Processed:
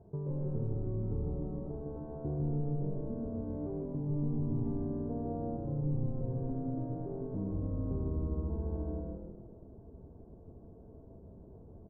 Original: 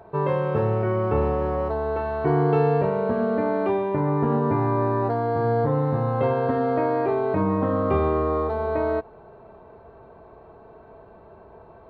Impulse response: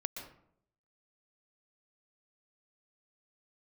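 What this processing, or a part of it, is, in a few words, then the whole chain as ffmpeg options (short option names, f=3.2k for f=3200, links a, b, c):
television next door: -filter_complex "[0:a]acompressor=threshold=-30dB:ratio=4,lowpass=250[a];[1:a]atrim=start_sample=2205[b];[a][b]afir=irnorm=-1:irlink=0,asettb=1/sr,asplit=3[c][d][e];[c]atrim=end=4.654[f];[d]atrim=start=4.65:end=5.57,asetpts=PTS-STARTPTS,afade=t=in:d=0.004:c=qsin,afade=t=out:st=0.916:d=0.004:c=qsin,aecho=1:1:4.5:0.95,atrim=end_sample=40572[g];[e]atrim=start=5.566[h];[f][g]acrossfade=d=0.004:c1=hsin:c2=qsin[i];[i][h]acrossfade=d=0.004:c1=qsin:c2=hsin,asplit=6[j][k][l][m][n][o];[k]adelay=156,afreqshift=-140,volume=-3.5dB[p];[l]adelay=312,afreqshift=-280,volume=-11.2dB[q];[m]adelay=468,afreqshift=-420,volume=-19dB[r];[n]adelay=624,afreqshift=-560,volume=-26.7dB[s];[o]adelay=780,afreqshift=-700,volume=-34.5dB[t];[j][p][q][r][s][t]amix=inputs=6:normalize=0"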